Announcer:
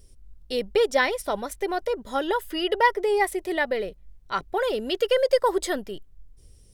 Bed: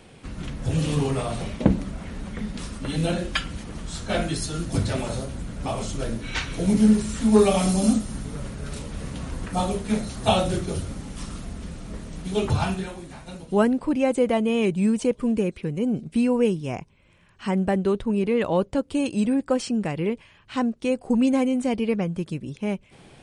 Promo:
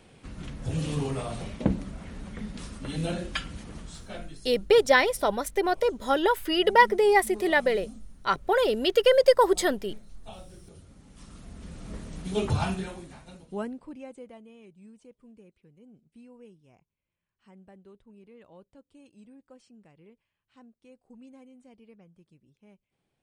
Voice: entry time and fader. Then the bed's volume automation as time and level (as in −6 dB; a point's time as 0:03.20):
3.95 s, +2.0 dB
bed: 0:03.77 −6 dB
0:04.56 −25.5 dB
0:10.56 −25.5 dB
0:11.89 −3.5 dB
0:12.96 −3.5 dB
0:14.60 −30 dB